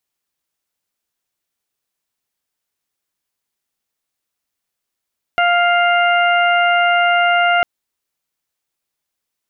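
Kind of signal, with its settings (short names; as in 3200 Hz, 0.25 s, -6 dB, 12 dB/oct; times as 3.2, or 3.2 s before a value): steady additive tone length 2.25 s, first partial 700 Hz, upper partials -1.5/-6/-8 dB, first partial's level -14 dB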